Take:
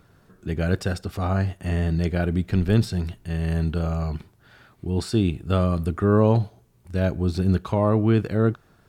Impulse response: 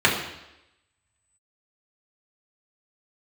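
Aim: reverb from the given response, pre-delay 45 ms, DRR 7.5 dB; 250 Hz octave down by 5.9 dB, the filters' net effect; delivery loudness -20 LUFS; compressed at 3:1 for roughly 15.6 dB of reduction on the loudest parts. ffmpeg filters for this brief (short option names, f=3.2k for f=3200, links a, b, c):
-filter_complex "[0:a]equalizer=f=250:t=o:g=-9,acompressor=threshold=-40dB:ratio=3,asplit=2[a][b];[1:a]atrim=start_sample=2205,adelay=45[c];[b][c]afir=irnorm=-1:irlink=0,volume=-27.5dB[d];[a][d]amix=inputs=2:normalize=0,volume=19dB"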